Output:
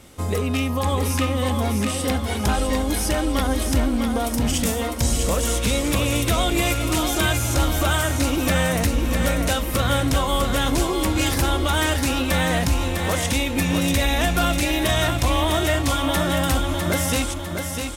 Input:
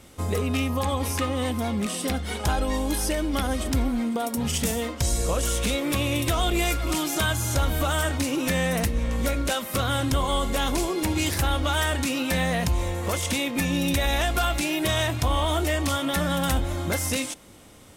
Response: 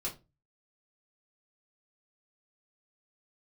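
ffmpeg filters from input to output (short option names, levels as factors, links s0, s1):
-af "aecho=1:1:652|1304|1956|2608|3260|3912:0.531|0.244|0.112|0.0517|0.0238|0.0109,volume=1.33"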